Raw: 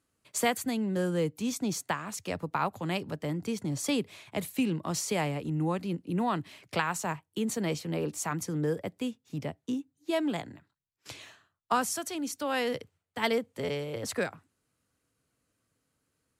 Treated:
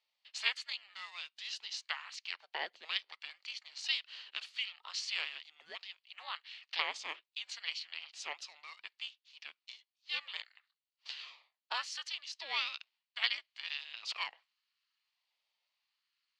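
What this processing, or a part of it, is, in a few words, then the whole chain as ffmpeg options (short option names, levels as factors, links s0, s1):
voice changer toy: -af "highpass=f=1400:w=0.5412,highpass=f=1400:w=1.3066,highshelf=f=11000:g=5.5,aeval=exprs='val(0)*sin(2*PI*400*n/s+400*0.65/0.71*sin(2*PI*0.71*n/s))':c=same,highpass=450,equalizer=f=1500:t=q:w=4:g=-6,equalizer=f=2900:t=q:w=4:g=6,equalizer=f=4400:t=q:w=4:g=8,lowpass=f=4700:w=0.5412,lowpass=f=4700:w=1.3066,volume=1.19"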